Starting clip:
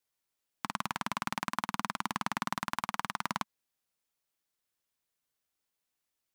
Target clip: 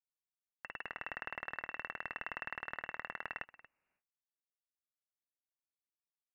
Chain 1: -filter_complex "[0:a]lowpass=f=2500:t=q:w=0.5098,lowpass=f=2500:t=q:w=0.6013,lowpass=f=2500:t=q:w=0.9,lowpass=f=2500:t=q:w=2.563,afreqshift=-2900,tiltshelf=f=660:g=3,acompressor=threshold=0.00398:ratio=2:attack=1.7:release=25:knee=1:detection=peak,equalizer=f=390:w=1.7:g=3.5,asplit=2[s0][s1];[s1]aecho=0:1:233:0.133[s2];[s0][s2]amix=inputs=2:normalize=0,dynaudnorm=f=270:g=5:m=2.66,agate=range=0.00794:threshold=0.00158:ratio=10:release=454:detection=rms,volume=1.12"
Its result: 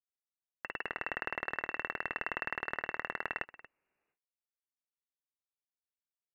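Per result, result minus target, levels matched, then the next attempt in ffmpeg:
compression: peak gain reduction -5 dB; 500 Hz band +3.0 dB
-filter_complex "[0:a]lowpass=f=2500:t=q:w=0.5098,lowpass=f=2500:t=q:w=0.6013,lowpass=f=2500:t=q:w=0.9,lowpass=f=2500:t=q:w=2.563,afreqshift=-2900,tiltshelf=f=660:g=3,acompressor=threshold=0.00119:ratio=2:attack=1.7:release=25:knee=1:detection=peak,equalizer=f=390:w=1.7:g=3.5,asplit=2[s0][s1];[s1]aecho=0:1:233:0.133[s2];[s0][s2]amix=inputs=2:normalize=0,dynaudnorm=f=270:g=5:m=2.66,agate=range=0.00794:threshold=0.00158:ratio=10:release=454:detection=rms,volume=1.12"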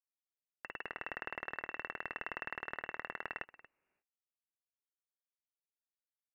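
500 Hz band +3.0 dB
-filter_complex "[0:a]lowpass=f=2500:t=q:w=0.5098,lowpass=f=2500:t=q:w=0.6013,lowpass=f=2500:t=q:w=0.9,lowpass=f=2500:t=q:w=2.563,afreqshift=-2900,tiltshelf=f=660:g=3,acompressor=threshold=0.00119:ratio=2:attack=1.7:release=25:knee=1:detection=peak,equalizer=f=390:w=1.7:g=-3.5,asplit=2[s0][s1];[s1]aecho=0:1:233:0.133[s2];[s0][s2]amix=inputs=2:normalize=0,dynaudnorm=f=270:g=5:m=2.66,agate=range=0.00794:threshold=0.00158:ratio=10:release=454:detection=rms,volume=1.12"

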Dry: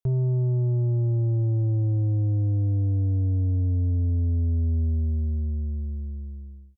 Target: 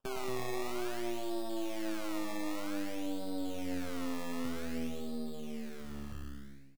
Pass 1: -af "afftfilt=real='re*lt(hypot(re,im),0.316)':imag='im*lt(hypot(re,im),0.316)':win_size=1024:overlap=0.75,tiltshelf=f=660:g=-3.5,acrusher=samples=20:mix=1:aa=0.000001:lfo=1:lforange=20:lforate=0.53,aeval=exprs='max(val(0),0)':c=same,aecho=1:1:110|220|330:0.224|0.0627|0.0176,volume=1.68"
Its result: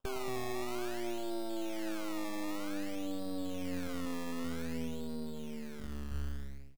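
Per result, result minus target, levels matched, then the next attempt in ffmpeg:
echo-to-direct -6.5 dB; 125 Hz band +4.0 dB
-af "afftfilt=real='re*lt(hypot(re,im),0.316)':imag='im*lt(hypot(re,im),0.316)':win_size=1024:overlap=0.75,tiltshelf=f=660:g=-3.5,acrusher=samples=20:mix=1:aa=0.000001:lfo=1:lforange=20:lforate=0.53,aeval=exprs='max(val(0),0)':c=same,aecho=1:1:110|220|330|440:0.473|0.132|0.0371|0.0104,volume=1.68"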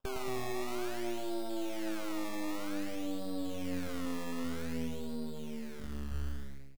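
125 Hz band +4.5 dB
-af "afftfilt=real='re*lt(hypot(re,im),0.316)':imag='im*lt(hypot(re,im),0.316)':win_size=1024:overlap=0.75,highpass=f=89:w=0.5412,highpass=f=89:w=1.3066,tiltshelf=f=660:g=-3.5,acrusher=samples=20:mix=1:aa=0.000001:lfo=1:lforange=20:lforate=0.53,aeval=exprs='max(val(0),0)':c=same,aecho=1:1:110|220|330|440:0.473|0.132|0.0371|0.0104,volume=1.68"

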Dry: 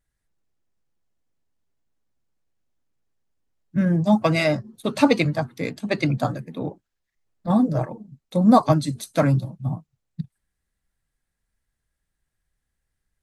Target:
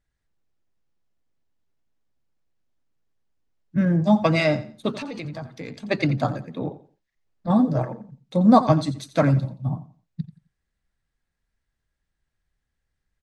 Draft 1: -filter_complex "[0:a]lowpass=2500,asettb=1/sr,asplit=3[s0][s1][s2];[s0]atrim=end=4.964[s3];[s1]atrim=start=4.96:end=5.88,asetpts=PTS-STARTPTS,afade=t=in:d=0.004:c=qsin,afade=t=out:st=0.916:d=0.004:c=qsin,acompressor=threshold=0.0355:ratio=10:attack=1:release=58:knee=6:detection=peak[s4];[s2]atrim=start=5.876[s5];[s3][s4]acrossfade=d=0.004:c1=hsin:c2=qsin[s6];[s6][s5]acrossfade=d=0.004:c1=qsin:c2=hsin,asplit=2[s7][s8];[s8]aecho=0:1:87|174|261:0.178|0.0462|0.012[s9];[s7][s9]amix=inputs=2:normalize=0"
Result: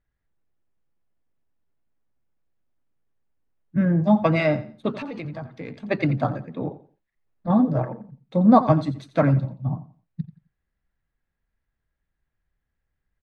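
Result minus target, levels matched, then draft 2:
8 kHz band -14.0 dB
-filter_complex "[0:a]lowpass=6100,asettb=1/sr,asplit=3[s0][s1][s2];[s0]atrim=end=4.964[s3];[s1]atrim=start=4.96:end=5.88,asetpts=PTS-STARTPTS,afade=t=in:d=0.004:c=qsin,afade=t=out:st=0.916:d=0.004:c=qsin,acompressor=threshold=0.0355:ratio=10:attack=1:release=58:knee=6:detection=peak[s4];[s2]atrim=start=5.876[s5];[s3][s4]acrossfade=d=0.004:c1=hsin:c2=qsin[s6];[s6][s5]acrossfade=d=0.004:c1=qsin:c2=hsin,asplit=2[s7][s8];[s8]aecho=0:1:87|174|261:0.178|0.0462|0.012[s9];[s7][s9]amix=inputs=2:normalize=0"

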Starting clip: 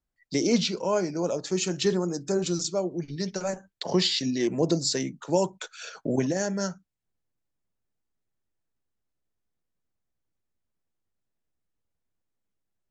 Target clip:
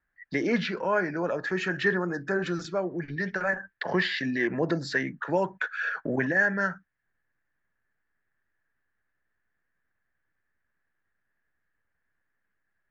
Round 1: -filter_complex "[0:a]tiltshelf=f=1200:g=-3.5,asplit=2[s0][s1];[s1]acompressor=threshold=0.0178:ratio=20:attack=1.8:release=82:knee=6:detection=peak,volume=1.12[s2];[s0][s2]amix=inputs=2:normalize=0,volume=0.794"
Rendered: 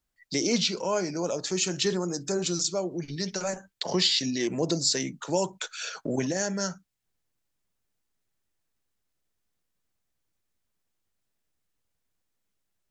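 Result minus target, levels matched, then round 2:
2 kHz band -11.5 dB
-filter_complex "[0:a]lowpass=f=1700:t=q:w=8.4,tiltshelf=f=1200:g=-3.5,asplit=2[s0][s1];[s1]acompressor=threshold=0.0178:ratio=20:attack=1.8:release=82:knee=6:detection=peak,volume=1.12[s2];[s0][s2]amix=inputs=2:normalize=0,volume=0.794"

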